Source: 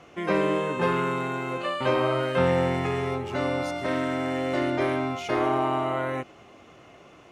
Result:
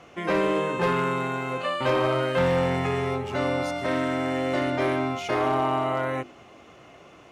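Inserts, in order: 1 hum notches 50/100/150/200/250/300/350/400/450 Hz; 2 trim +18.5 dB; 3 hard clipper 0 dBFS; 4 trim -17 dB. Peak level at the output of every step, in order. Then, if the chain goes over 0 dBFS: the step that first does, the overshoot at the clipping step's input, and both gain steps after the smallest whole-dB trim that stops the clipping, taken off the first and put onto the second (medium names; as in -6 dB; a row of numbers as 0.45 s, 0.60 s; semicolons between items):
-10.0 dBFS, +8.5 dBFS, 0.0 dBFS, -17.0 dBFS; step 2, 8.5 dB; step 2 +9.5 dB, step 4 -8 dB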